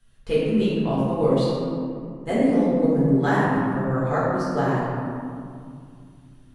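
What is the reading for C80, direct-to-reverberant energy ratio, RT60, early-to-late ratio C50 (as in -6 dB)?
-0.5 dB, -9.5 dB, 2.3 s, -2.5 dB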